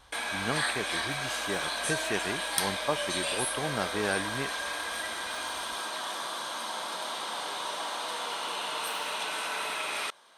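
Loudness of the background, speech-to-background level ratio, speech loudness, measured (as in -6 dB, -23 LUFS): -32.0 LUFS, -3.0 dB, -35.0 LUFS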